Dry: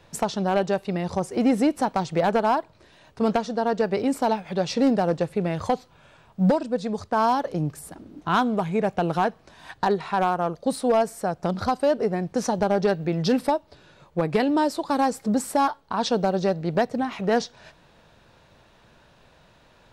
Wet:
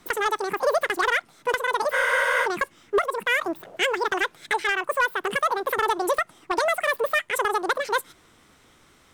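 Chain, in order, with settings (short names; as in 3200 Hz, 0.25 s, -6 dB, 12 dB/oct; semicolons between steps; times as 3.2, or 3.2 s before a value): wide varispeed 2.18×; spectral freeze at 1.95, 0.50 s; gain -1 dB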